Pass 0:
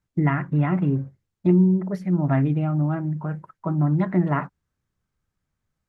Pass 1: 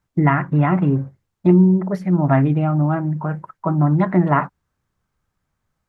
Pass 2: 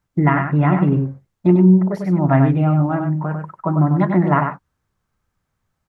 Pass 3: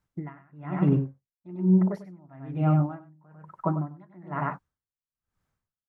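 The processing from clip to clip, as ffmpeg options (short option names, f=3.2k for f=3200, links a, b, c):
-af "equalizer=f=930:t=o:w=1.6:g=5.5,volume=4dB"
-af "aecho=1:1:97:0.501"
-af "aeval=exprs='val(0)*pow(10,-32*(0.5-0.5*cos(2*PI*1.1*n/s))/20)':c=same,volume=-4.5dB"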